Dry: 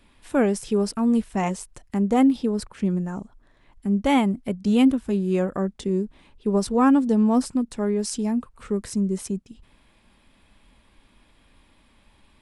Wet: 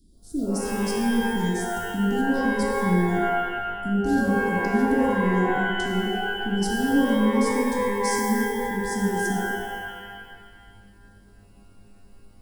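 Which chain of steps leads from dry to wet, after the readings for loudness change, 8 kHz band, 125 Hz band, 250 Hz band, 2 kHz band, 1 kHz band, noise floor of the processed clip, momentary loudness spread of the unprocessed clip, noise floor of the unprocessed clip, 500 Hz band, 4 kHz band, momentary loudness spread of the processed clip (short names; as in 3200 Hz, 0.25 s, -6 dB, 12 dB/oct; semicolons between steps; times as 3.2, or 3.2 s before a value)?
-0.5 dB, +2.0 dB, +0.5 dB, -2.0 dB, +11.5 dB, +4.0 dB, -52 dBFS, 11 LU, -59 dBFS, +0.5 dB, +4.5 dB, 7 LU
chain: soft clip -20.5 dBFS, distortion -10 dB; elliptic band-stop 340–4800 Hz, stop band 40 dB; shimmer reverb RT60 1.6 s, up +12 st, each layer -2 dB, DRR 0 dB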